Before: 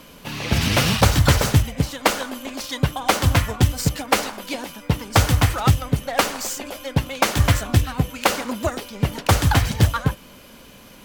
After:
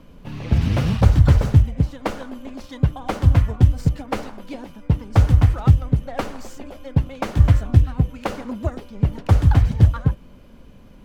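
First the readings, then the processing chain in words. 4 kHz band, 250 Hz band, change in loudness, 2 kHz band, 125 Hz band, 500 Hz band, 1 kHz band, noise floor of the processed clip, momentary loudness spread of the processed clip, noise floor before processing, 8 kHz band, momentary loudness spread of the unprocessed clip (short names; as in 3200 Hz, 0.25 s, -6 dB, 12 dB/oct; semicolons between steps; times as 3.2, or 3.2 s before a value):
-14.5 dB, 0.0 dB, +1.5 dB, -11.0 dB, +3.5 dB, -4.5 dB, -7.5 dB, -45 dBFS, 19 LU, -45 dBFS, under -15 dB, 12 LU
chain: tilt -3.5 dB/oct; gain -8 dB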